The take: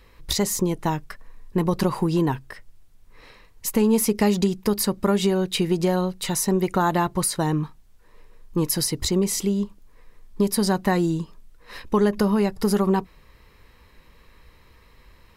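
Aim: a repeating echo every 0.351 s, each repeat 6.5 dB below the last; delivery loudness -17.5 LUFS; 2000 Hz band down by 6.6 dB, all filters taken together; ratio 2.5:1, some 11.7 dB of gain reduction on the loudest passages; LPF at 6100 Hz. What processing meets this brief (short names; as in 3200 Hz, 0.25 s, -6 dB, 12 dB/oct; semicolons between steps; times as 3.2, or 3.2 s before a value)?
LPF 6100 Hz; bell 2000 Hz -8.5 dB; compressor 2.5:1, threshold -34 dBFS; feedback echo 0.351 s, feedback 47%, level -6.5 dB; gain +16.5 dB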